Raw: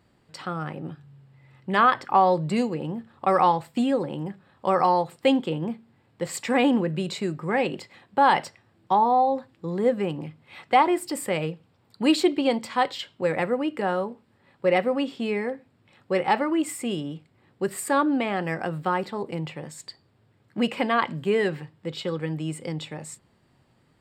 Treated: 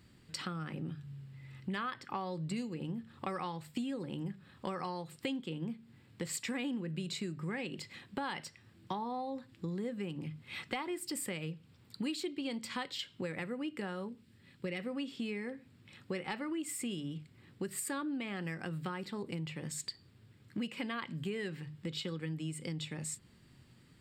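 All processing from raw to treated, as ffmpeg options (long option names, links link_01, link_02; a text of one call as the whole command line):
ffmpeg -i in.wav -filter_complex "[0:a]asettb=1/sr,asplit=3[link_01][link_02][link_03];[link_01]atrim=end=14.094[link_04];[link_02]atrim=start=14.09:end=14.8,asetpts=PTS-STARTPTS,afade=type=in:duration=0.004:curve=qsin,afade=type=out:start_time=0.706:duration=0.004:curve=qsin,highpass=54,equalizer=frequency=880:width=0.74:gain=-8.5[link_05];[link_03]atrim=start=14.796[link_06];[link_04][link_05]acrossfade=duration=0.004:curve1=hsin:curve2=qsin[link_07];[link_07][link_06]acrossfade=duration=0.004:curve1=qsin:curve2=hsin,equalizer=frequency=720:width_type=o:width=1.8:gain=-14,bandreject=frequency=50:width_type=h:width=6,bandreject=frequency=100:width_type=h:width=6,bandreject=frequency=150:width_type=h:width=6,acompressor=threshold=-42dB:ratio=5,volume=5dB" out.wav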